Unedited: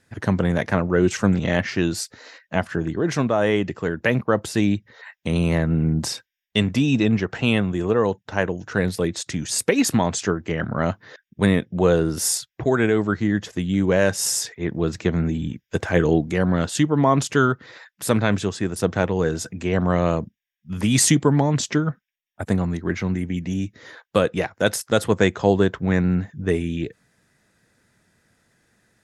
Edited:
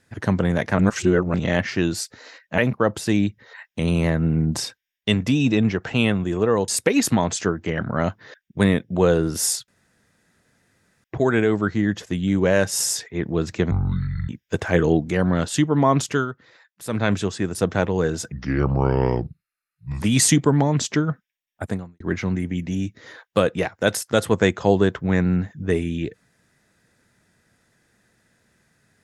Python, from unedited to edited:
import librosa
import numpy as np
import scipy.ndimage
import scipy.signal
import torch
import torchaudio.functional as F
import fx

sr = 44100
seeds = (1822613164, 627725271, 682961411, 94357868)

y = fx.edit(x, sr, fx.reverse_span(start_s=0.79, length_s=0.55),
    fx.cut(start_s=2.58, length_s=1.48),
    fx.cut(start_s=8.16, length_s=1.34),
    fx.insert_room_tone(at_s=12.5, length_s=1.36),
    fx.speed_span(start_s=15.17, length_s=0.33, speed=0.57),
    fx.fade_down_up(start_s=17.23, length_s=1.11, db=-9.5, fade_s=0.24, curve='qsin'),
    fx.speed_span(start_s=19.53, length_s=1.27, speed=0.75),
    fx.fade_out_span(start_s=22.43, length_s=0.36, curve='qua'), tone=tone)